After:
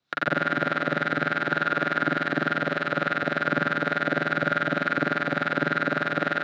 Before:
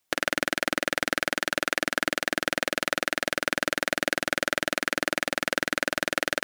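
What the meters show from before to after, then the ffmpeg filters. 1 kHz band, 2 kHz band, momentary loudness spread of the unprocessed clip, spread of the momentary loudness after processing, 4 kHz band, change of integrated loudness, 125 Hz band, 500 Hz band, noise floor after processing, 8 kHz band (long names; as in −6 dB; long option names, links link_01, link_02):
+5.5 dB, +2.0 dB, 1 LU, 1 LU, −7.0 dB, +2.0 dB, +10.5 dB, +2.0 dB, −33 dBFS, below −20 dB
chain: -filter_complex "[0:a]acrossover=split=800[link_01][link_02];[link_01]aeval=exprs='val(0)*(1-0.7/2+0.7/2*cos(2*PI*3.4*n/s))':channel_layout=same[link_03];[link_02]aeval=exprs='val(0)*(1-0.7/2-0.7/2*cos(2*PI*3.4*n/s))':channel_layout=same[link_04];[link_03][link_04]amix=inputs=2:normalize=0,asplit=2[link_05][link_06];[link_06]adelay=43,volume=-4dB[link_07];[link_05][link_07]amix=inputs=2:normalize=0,alimiter=limit=-12.5dB:level=0:latency=1:release=183,highpass=110,equalizer=frequency=150:width_type=q:width=4:gain=8,equalizer=frequency=1400:width_type=q:width=4:gain=10,equalizer=frequency=3900:width_type=q:width=4:gain=10,lowpass=frequency=5300:width=0.5412,lowpass=frequency=5300:width=1.3066,acrossover=split=2500[link_08][link_09];[link_09]acompressor=threshold=-46dB:ratio=4:attack=1:release=60[link_10];[link_08][link_10]amix=inputs=2:normalize=0,lowshelf=frequency=300:gain=7.5,asplit=2[link_11][link_12];[link_12]aecho=0:1:88|176|264|352|440|528:0.631|0.29|0.134|0.0614|0.0283|0.013[link_13];[link_11][link_13]amix=inputs=2:normalize=0,volume=2dB"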